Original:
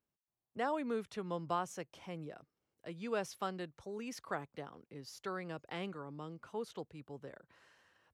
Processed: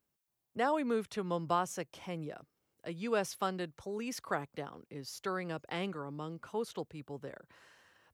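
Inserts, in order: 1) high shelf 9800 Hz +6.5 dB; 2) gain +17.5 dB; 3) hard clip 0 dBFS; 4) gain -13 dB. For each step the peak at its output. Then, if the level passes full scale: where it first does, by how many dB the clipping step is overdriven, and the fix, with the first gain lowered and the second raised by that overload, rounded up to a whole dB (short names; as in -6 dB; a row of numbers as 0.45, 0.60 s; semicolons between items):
-21.5, -4.0, -4.0, -17.0 dBFS; no overload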